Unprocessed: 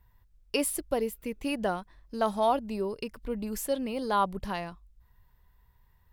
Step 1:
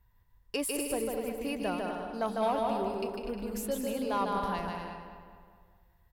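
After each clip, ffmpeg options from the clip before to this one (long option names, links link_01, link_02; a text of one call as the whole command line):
ffmpeg -i in.wav -filter_complex "[0:a]asplit=2[link_01][link_02];[link_02]aecho=0:1:150|247.5|310.9|352.1|378.8:0.631|0.398|0.251|0.158|0.1[link_03];[link_01][link_03]amix=inputs=2:normalize=0,asoftclip=type=tanh:threshold=-17dB,asplit=2[link_04][link_05];[link_05]adelay=209,lowpass=frequency=3100:poles=1,volume=-8dB,asplit=2[link_06][link_07];[link_07]adelay=209,lowpass=frequency=3100:poles=1,volume=0.51,asplit=2[link_08][link_09];[link_09]adelay=209,lowpass=frequency=3100:poles=1,volume=0.51,asplit=2[link_10][link_11];[link_11]adelay=209,lowpass=frequency=3100:poles=1,volume=0.51,asplit=2[link_12][link_13];[link_13]adelay=209,lowpass=frequency=3100:poles=1,volume=0.51,asplit=2[link_14][link_15];[link_15]adelay=209,lowpass=frequency=3100:poles=1,volume=0.51[link_16];[link_06][link_08][link_10][link_12][link_14][link_16]amix=inputs=6:normalize=0[link_17];[link_04][link_17]amix=inputs=2:normalize=0,volume=-4dB" out.wav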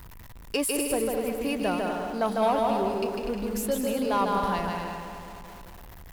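ffmpeg -i in.wav -af "aeval=exprs='val(0)+0.5*0.00531*sgn(val(0))':channel_layout=same,volume=5dB" out.wav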